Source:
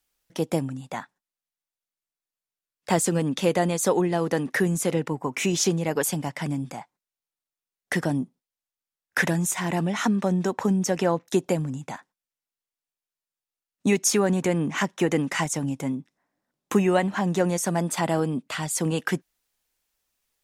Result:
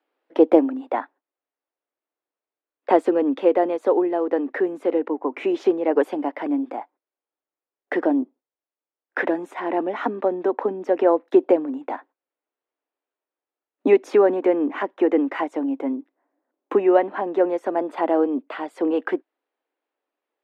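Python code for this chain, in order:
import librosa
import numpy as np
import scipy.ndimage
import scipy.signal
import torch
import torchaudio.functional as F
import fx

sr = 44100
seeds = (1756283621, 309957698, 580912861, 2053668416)

y = scipy.signal.sosfilt(scipy.signal.ellip(4, 1.0, 60, 280.0, 'highpass', fs=sr, output='sos'), x)
y = fx.air_absorb(y, sr, metres=460.0)
y = fx.rider(y, sr, range_db=10, speed_s=2.0)
y = fx.peak_eq(y, sr, hz=420.0, db=9.0, octaves=2.8)
y = y * 10.0 ** (-1.5 / 20.0)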